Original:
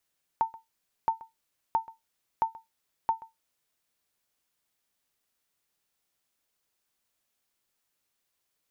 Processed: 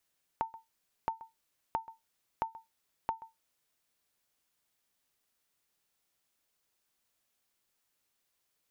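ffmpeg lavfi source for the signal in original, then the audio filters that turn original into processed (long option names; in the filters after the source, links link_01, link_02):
-f lavfi -i "aevalsrc='0.15*(sin(2*PI*901*mod(t,0.67))*exp(-6.91*mod(t,0.67)/0.17)+0.0944*sin(2*PI*901*max(mod(t,0.67)-0.13,0))*exp(-6.91*max(mod(t,0.67)-0.13,0)/0.17))':duration=3.35:sample_rate=44100"
-af "acompressor=threshold=-32dB:ratio=6"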